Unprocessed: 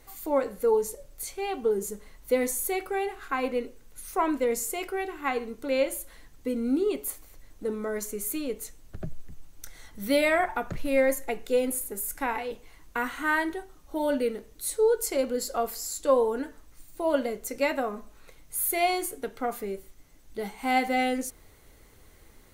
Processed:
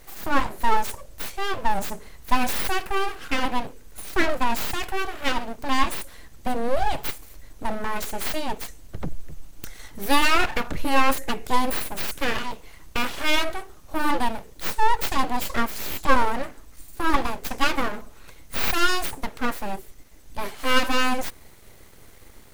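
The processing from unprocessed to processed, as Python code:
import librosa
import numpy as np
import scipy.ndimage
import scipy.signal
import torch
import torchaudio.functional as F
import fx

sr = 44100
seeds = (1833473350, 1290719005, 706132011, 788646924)

y = np.abs(x)
y = y * librosa.db_to_amplitude(7.5)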